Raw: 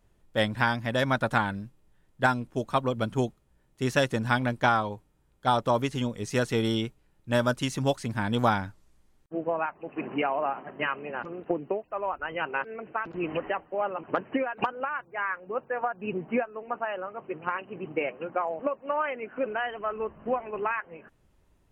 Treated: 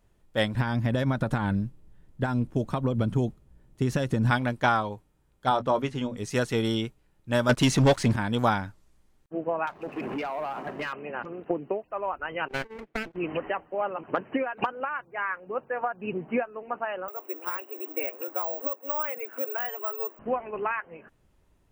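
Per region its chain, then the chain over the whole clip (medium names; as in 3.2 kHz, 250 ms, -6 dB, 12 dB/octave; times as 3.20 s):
0.54–4.31 s: compression 10:1, threshold -27 dBFS + bass shelf 410 Hz +11 dB
5.49–6.17 s: low-pass 3 kHz 6 dB/octave + hum notches 60/120/180/240 Hz + doubling 20 ms -13 dB
7.49–8.16 s: waveshaping leveller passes 3 + treble shelf 10 kHz -12 dB
9.67–10.93 s: compression 5:1, threshold -34 dBFS + waveshaping leveller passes 2
12.48–13.16 s: comb filter that takes the minimum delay 0.48 ms + gate -41 dBFS, range -20 dB
17.08–20.19 s: steep high-pass 280 Hz 48 dB/octave + compression 1.5:1, threshold -36 dBFS + careless resampling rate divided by 2×, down none, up zero stuff
whole clip: none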